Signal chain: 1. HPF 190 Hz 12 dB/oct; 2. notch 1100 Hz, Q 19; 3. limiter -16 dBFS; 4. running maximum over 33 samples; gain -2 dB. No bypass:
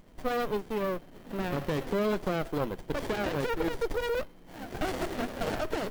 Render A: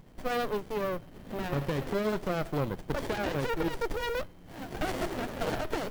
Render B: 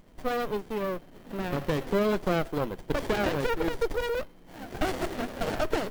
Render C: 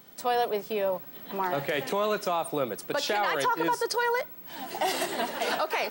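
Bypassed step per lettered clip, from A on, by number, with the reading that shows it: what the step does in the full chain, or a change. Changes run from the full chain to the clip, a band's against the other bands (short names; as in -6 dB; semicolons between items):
1, 125 Hz band +2.0 dB; 3, crest factor change +2.0 dB; 4, crest factor change -2.0 dB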